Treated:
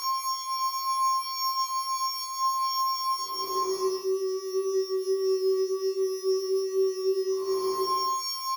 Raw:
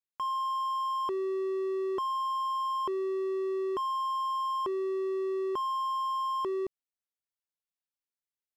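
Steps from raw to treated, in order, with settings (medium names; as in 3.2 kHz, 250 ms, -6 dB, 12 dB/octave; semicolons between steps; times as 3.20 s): sorted samples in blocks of 8 samples; Paulstretch 4.6×, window 0.25 s, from 3.87 s; early reflections 21 ms -3.5 dB, 37 ms -3.5 dB; trim -1.5 dB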